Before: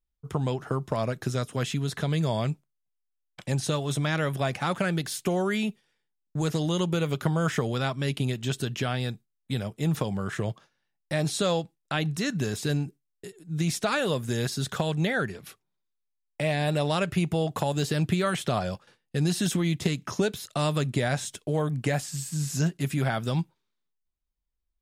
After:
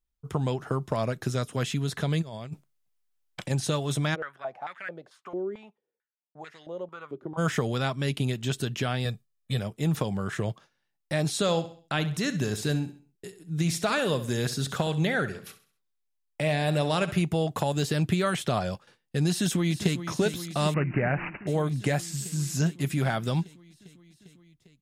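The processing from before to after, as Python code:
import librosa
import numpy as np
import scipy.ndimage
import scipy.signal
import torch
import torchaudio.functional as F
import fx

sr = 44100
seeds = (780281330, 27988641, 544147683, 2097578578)

y = fx.over_compress(x, sr, threshold_db=-33.0, ratio=-0.5, at=(2.21, 3.49), fade=0.02)
y = fx.filter_held_bandpass(y, sr, hz=4.5, low_hz=350.0, high_hz=1900.0, at=(4.14, 7.37), fade=0.02)
y = fx.comb(y, sr, ms=1.7, depth=0.65, at=(9.05, 9.59))
y = fx.echo_feedback(y, sr, ms=66, feedback_pct=39, wet_db=-13.5, at=(11.41, 17.22))
y = fx.echo_throw(y, sr, start_s=19.3, length_s=0.75, ms=400, feedback_pct=80, wet_db=-11.0)
y = fx.resample_bad(y, sr, factor=8, down='none', up='filtered', at=(20.74, 21.47))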